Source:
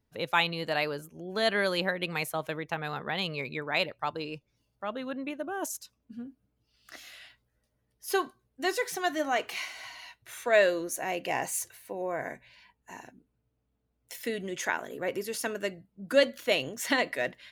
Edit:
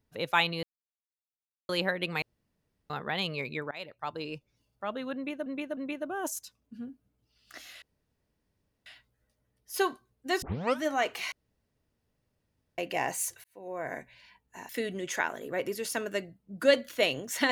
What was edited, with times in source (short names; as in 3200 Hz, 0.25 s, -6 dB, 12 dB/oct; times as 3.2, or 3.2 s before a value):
0.63–1.69 mute
2.22–2.9 room tone
3.71–4.31 fade in, from -21.5 dB
5.15–5.46 loop, 3 plays
7.2 insert room tone 1.04 s
8.76 tape start 0.40 s
9.66–11.12 room tone
11.78–12.3 fade in
13.03–14.18 cut